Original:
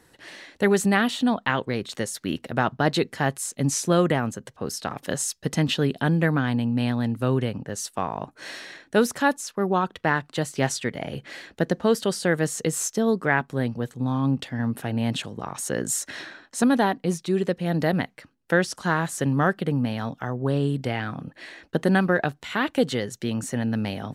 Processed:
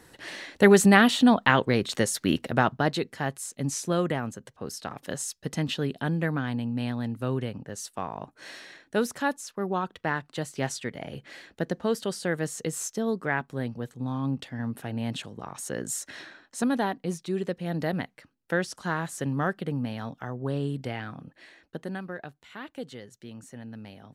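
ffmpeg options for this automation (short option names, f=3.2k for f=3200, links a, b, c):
-af "volume=3.5dB,afade=t=out:st=2.32:d=0.66:silence=0.334965,afade=t=out:st=20.84:d=1.15:silence=0.316228"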